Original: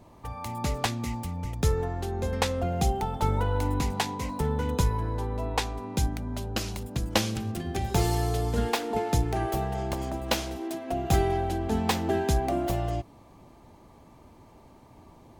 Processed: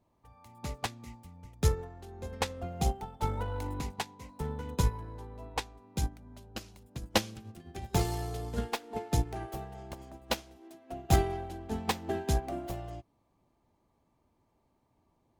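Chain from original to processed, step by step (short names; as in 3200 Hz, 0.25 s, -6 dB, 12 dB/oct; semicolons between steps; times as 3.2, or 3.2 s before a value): in parallel at -6.5 dB: one-sided clip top -27.5 dBFS; on the sum: upward expander 2.5:1, over -31 dBFS; gain -1.5 dB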